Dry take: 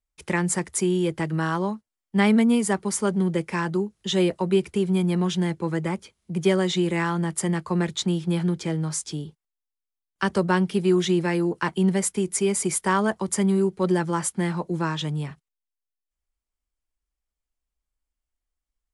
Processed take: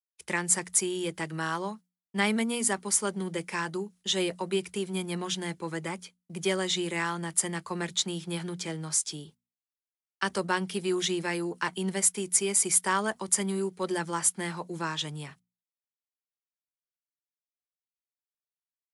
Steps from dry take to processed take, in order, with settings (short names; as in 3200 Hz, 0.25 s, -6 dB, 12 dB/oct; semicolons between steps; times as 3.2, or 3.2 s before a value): expander -40 dBFS; tilt +2.5 dB/oct; notches 60/120/180/240 Hz; gain -4.5 dB